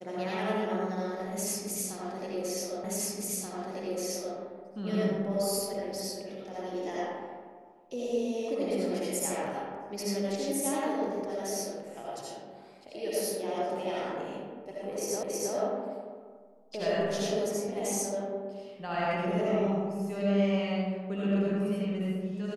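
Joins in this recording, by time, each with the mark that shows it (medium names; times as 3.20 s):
2.84 s: repeat of the last 1.53 s
15.23 s: repeat of the last 0.32 s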